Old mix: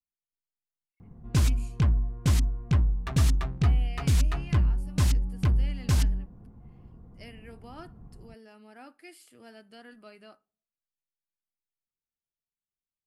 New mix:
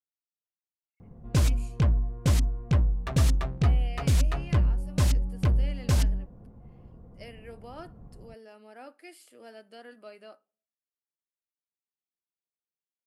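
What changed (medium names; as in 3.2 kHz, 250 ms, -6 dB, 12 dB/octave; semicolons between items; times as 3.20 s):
speech: add high-pass 230 Hz; master: add peaking EQ 550 Hz +8.5 dB 0.58 oct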